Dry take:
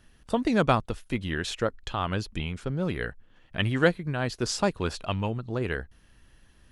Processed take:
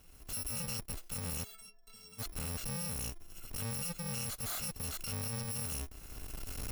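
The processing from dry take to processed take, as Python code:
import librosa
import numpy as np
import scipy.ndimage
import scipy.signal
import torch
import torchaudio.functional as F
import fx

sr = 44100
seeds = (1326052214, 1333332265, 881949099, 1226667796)

y = fx.bit_reversed(x, sr, seeds[0], block=128)
y = fx.recorder_agc(y, sr, target_db=-13.5, rise_db_per_s=24.0, max_gain_db=30)
y = fx.tube_stage(y, sr, drive_db=36.0, bias=0.35)
y = fx.stiff_resonator(y, sr, f0_hz=200.0, decay_s=0.38, stiffness=0.03, at=(1.43, 2.18), fade=0.02)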